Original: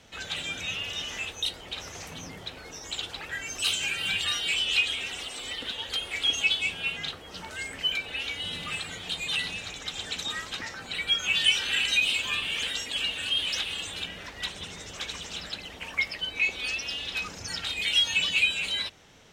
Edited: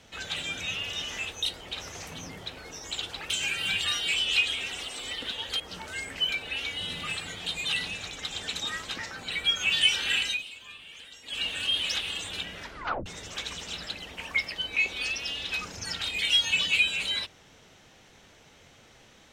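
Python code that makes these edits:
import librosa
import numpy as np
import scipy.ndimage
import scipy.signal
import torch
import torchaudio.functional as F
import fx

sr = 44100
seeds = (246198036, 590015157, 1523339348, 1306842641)

y = fx.edit(x, sr, fx.cut(start_s=3.3, length_s=0.4),
    fx.cut(start_s=6.0, length_s=1.23),
    fx.fade_down_up(start_s=11.81, length_s=1.29, db=-16.5, fade_s=0.26),
    fx.tape_stop(start_s=14.26, length_s=0.43), tone=tone)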